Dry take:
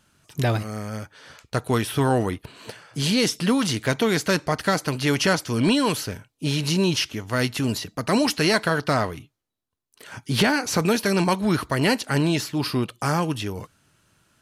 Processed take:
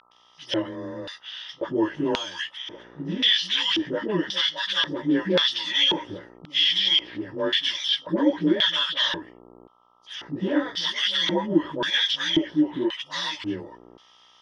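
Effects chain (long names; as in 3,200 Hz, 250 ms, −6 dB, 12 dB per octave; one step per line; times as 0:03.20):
partials spread apart or drawn together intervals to 92%
EQ curve with evenly spaced ripples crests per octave 1.2, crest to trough 15 dB
de-essing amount 90%
all-pass dispersion highs, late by 114 ms, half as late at 510 Hz
automatic gain control gain up to 5 dB
hum with harmonics 60 Hz, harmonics 22, −41 dBFS −4 dB per octave
auto-filter band-pass square 0.93 Hz 370–3,500 Hz
flat-topped bell 2,300 Hz +11.5 dB 2.9 octaves
notch filter 1,100 Hz, Q 5.1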